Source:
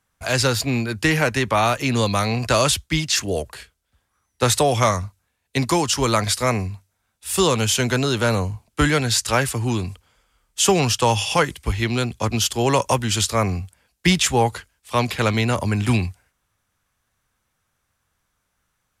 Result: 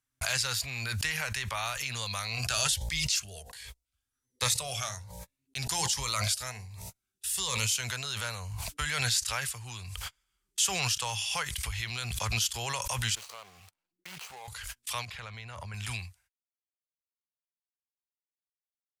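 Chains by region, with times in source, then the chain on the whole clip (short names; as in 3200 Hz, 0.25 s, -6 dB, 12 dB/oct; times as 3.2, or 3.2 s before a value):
2.27–7.78 de-hum 58.83 Hz, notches 16 + cascading phaser rising 1.3 Hz
13.15–14.48 median filter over 25 samples + HPF 360 Hz + compressor 3:1, threshold -25 dBFS
15.05–15.74 LPF 1700 Hz 6 dB/oct + compressor 4:1, threshold -22 dBFS
whole clip: gate -47 dBFS, range -43 dB; passive tone stack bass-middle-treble 10-0-10; backwards sustainer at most 22 dB/s; gain -7 dB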